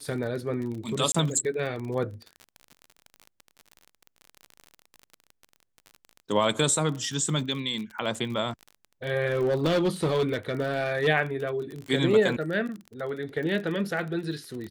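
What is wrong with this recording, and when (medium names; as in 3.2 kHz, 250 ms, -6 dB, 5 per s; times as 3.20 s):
crackle 36 per s -33 dBFS
1.12–1.15 s: dropout 25 ms
9.26–11.08 s: clipped -20 dBFS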